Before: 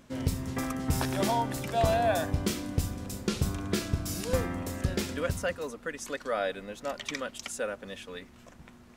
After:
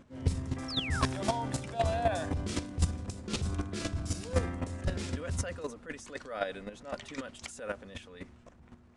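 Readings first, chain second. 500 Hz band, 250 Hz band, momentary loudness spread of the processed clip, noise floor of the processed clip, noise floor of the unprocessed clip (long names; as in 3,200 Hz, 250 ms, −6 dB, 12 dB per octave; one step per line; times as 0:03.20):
−5.0 dB, −4.0 dB, 12 LU, −58 dBFS, −54 dBFS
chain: sound drawn into the spectrogram fall, 0:00.68–0:01.05, 1,000–5,700 Hz −31 dBFS
transient designer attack −6 dB, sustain +6 dB
parametric band 83 Hz +8 dB 0.83 octaves
mains-hum notches 50/100 Hz
downsampling to 22,050 Hz
square-wave tremolo 3.9 Hz, depth 65%, duty 10%
one half of a high-frequency compander decoder only
level +2 dB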